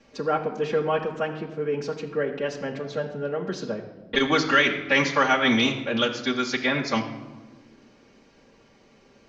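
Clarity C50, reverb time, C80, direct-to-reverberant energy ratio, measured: 10.0 dB, non-exponential decay, 11.0 dB, −6.5 dB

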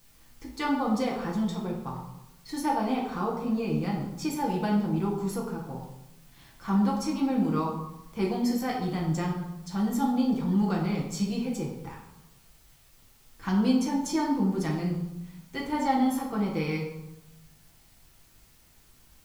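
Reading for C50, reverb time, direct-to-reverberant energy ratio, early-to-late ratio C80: 4.0 dB, 0.95 s, −3.0 dB, 7.0 dB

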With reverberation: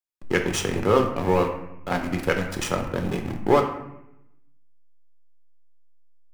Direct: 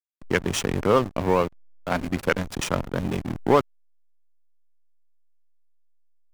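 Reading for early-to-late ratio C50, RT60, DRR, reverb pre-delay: 7.5 dB, 0.80 s, 3.0 dB, 5 ms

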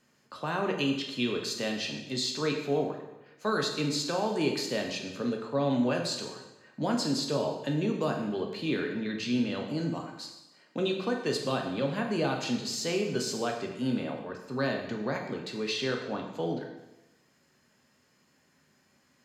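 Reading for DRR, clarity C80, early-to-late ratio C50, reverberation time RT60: 1.5 dB, 7.5 dB, 5.5 dB, 1.0 s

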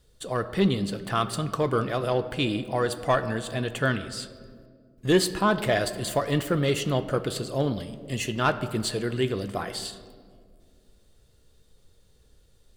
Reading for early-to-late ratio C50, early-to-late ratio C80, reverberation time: 13.0 dB, 14.0 dB, 2.0 s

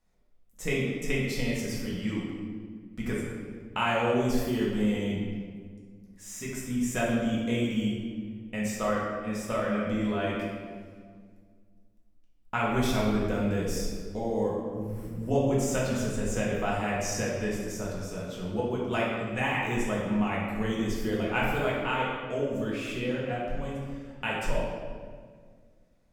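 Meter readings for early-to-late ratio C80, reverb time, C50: 2.0 dB, 1.8 s, −0.5 dB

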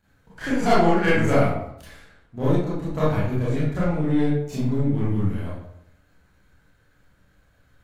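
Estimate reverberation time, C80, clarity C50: 0.75 s, 4.0 dB, −1.0 dB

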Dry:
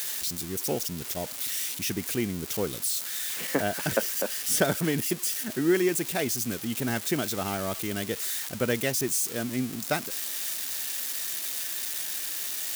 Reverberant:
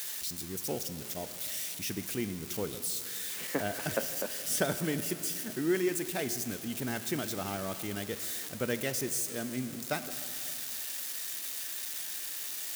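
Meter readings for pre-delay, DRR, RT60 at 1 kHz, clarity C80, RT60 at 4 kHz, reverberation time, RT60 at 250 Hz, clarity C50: 4 ms, 10.0 dB, 2.9 s, 11.5 dB, 2.7 s, 2.9 s, 2.8 s, 11.0 dB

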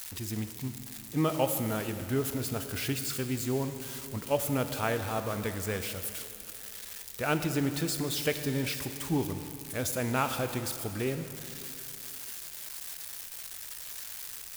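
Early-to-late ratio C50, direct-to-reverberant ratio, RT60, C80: 8.5 dB, 7.5 dB, 2.9 s, 9.0 dB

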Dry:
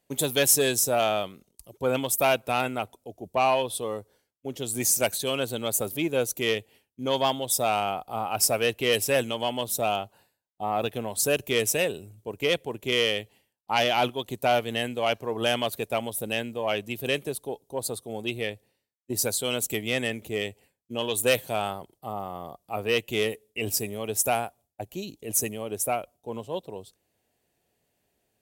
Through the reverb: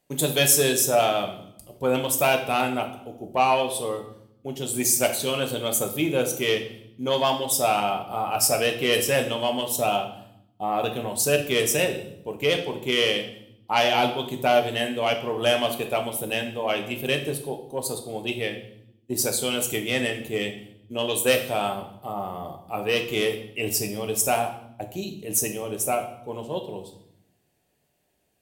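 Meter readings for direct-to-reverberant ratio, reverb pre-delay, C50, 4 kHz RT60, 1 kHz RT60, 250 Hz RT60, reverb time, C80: 4.0 dB, 5 ms, 9.5 dB, 0.70 s, 0.70 s, 1.2 s, 0.75 s, 13.0 dB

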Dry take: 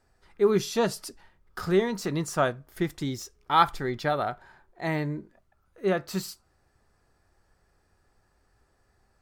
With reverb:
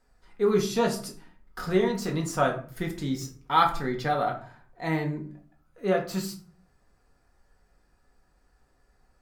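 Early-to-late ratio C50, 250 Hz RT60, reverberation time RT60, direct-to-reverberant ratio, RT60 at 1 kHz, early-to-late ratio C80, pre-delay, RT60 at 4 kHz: 10.5 dB, 0.70 s, 0.45 s, 0.5 dB, 0.40 s, 15.5 dB, 4 ms, 0.30 s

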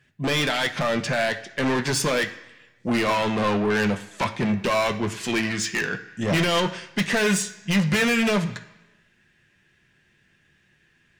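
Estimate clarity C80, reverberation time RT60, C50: 15.5 dB, 1.0 s, 12.5 dB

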